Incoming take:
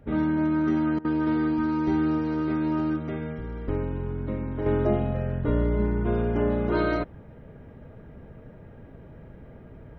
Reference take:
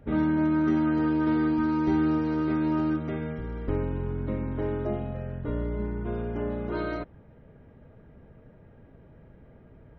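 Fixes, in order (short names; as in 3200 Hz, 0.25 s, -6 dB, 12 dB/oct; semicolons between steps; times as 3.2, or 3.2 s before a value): interpolate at 0.99, 56 ms; gain 0 dB, from 4.66 s -6.5 dB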